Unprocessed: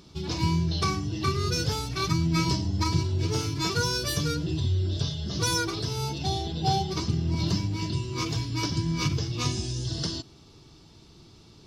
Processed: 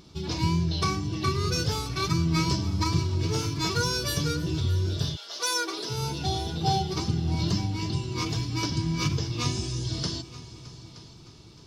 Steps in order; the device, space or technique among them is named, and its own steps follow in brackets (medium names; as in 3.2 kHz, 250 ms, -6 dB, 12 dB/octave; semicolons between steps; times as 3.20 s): multi-head tape echo (multi-head delay 308 ms, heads all three, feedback 45%, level -21 dB; wow and flutter 23 cents); 5.15–5.89 s: high-pass 730 Hz -> 260 Hz 24 dB/octave